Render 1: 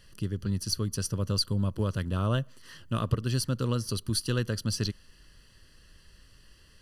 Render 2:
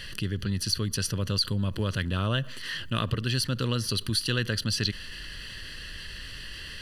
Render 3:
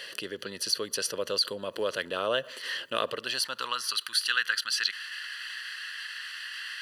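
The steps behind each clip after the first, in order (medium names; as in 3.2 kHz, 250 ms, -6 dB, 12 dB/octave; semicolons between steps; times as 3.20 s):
high-order bell 2.6 kHz +9.5 dB; level flattener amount 50%; trim -4 dB
high-pass sweep 510 Hz -> 1.4 kHz, 3.05–4.03 s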